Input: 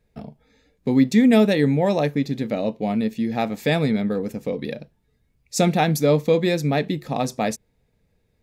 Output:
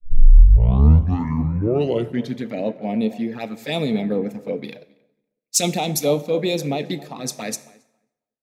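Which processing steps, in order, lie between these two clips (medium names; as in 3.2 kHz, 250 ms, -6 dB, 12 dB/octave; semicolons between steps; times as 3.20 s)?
tape start-up on the opening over 2.50 s; bass shelf 280 Hz -7 dB; in parallel at +1 dB: gain riding within 4 dB 0.5 s; on the sum: peak limiter -9 dBFS, peak gain reduction 8 dB; touch-sensitive flanger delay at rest 8.1 ms, full sweep at -14.5 dBFS; tape echo 273 ms, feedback 39%, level -14 dB, low-pass 1.6 kHz; plate-style reverb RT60 2.2 s, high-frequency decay 0.6×, DRR 14 dB; three bands expanded up and down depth 100%; trim -2.5 dB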